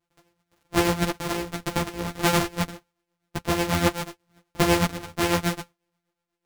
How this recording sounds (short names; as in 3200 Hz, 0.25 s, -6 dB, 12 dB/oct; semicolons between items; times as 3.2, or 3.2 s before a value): a buzz of ramps at a fixed pitch in blocks of 256 samples; tremolo triangle 8.1 Hz, depth 70%; a shimmering, thickened sound